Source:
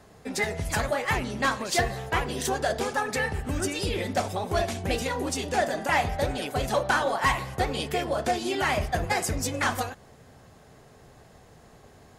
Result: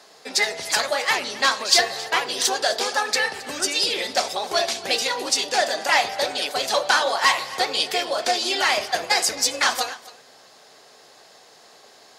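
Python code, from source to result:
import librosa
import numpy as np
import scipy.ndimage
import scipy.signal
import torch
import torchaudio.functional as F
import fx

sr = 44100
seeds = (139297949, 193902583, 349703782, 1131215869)

p1 = scipy.signal.sosfilt(scipy.signal.butter(2, 470.0, 'highpass', fs=sr, output='sos'), x)
p2 = fx.peak_eq(p1, sr, hz=4600.0, db=12.0, octaves=1.1)
p3 = p2 + fx.echo_single(p2, sr, ms=269, db=-19.0, dry=0)
y = p3 * 10.0 ** (4.0 / 20.0)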